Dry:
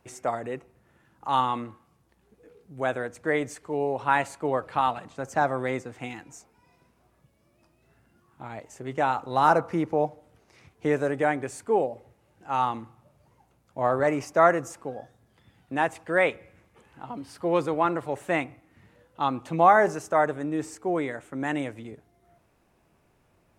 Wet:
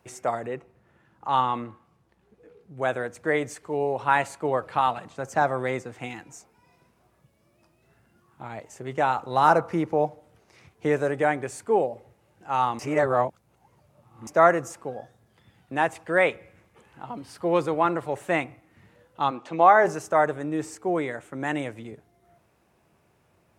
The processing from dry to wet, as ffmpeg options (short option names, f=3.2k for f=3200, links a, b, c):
-filter_complex "[0:a]asettb=1/sr,asplit=3[a][b][c];[a]atrim=end=0.464[d];[b]atrim=start=0.46:end=2.82,asetpts=PTS-STARTPTS,afade=t=in:d=0.004:c=qsin,afade=t=out:st=2.356:d=0.004:c=qsin,lowpass=f=3.7k:p=1[e];[c]atrim=start=2.816[f];[d][e]acrossfade=d=0.004:c1=hsin:c2=qsin[g];[g][f]acrossfade=d=0.004:c1=qsin:c2=hsin,asplit=3[h][i][j];[h]afade=t=out:st=19.3:d=0.02[k];[i]highpass=260,lowpass=5.8k,afade=t=in:st=19.3:d=0.02,afade=t=out:st=19.84:d=0.02[l];[j]afade=t=in:st=19.84:d=0.02[m];[k][l][m]amix=inputs=3:normalize=0,asplit=3[n][o][p];[n]atrim=end=12.792[q];[o]atrim=start=12.788:end=14.272,asetpts=PTS-STARTPTS,areverse[r];[p]atrim=start=14.268[s];[q][r]acrossfade=d=0.004:c1=hsin:c2=hsin[t];[t][s]acrossfade=d=0.004:c1=hsin:c2=hsin,highpass=67,equalizer=f=270:t=o:w=0.21:g=-5,volume=1.5dB"